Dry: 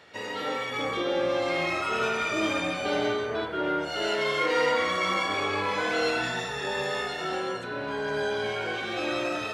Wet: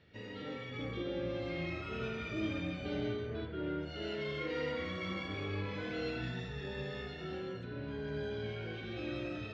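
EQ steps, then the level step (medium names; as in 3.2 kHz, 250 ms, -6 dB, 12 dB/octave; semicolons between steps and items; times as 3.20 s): distance through air 230 m; amplifier tone stack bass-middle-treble 10-0-1; +14.0 dB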